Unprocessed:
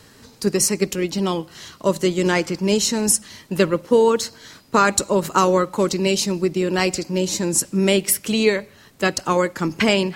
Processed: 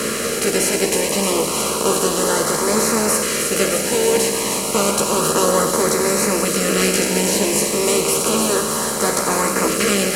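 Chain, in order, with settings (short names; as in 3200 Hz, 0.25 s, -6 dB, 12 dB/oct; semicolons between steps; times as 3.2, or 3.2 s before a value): per-bin compression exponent 0.2; chorus voices 2, 0.36 Hz, delay 14 ms, depth 1.5 ms; LFO notch saw up 0.31 Hz 830–3600 Hz; on a send: thin delay 0.311 s, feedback 79%, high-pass 4100 Hz, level -6 dB; on the sum: gain -5 dB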